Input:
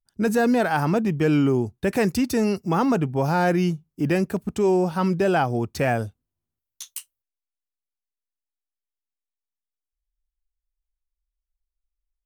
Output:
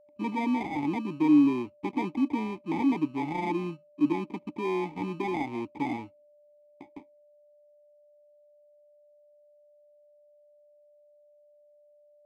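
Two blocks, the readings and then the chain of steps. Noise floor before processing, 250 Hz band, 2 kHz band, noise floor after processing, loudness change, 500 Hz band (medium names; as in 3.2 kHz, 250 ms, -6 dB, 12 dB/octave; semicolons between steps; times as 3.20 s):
under -85 dBFS, -4.0 dB, -11.0 dB, -61 dBFS, -6.5 dB, -13.0 dB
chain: sample-rate reducer 1.4 kHz, jitter 0%; vowel filter u; whistle 590 Hz -61 dBFS; trim +3.5 dB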